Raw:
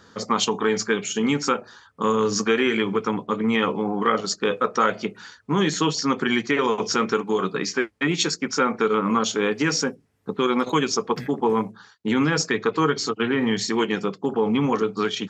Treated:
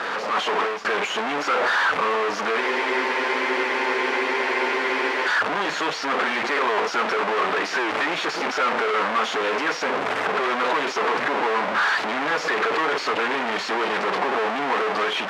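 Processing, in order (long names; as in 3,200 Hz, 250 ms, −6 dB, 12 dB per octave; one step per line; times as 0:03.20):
sign of each sample alone
automatic gain control gain up to 15 dB
brickwall limiter −16.5 dBFS, peak gain reduction 23 dB
band-pass filter 610–2,100 Hz
frozen spectrum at 0:02.63, 2.64 s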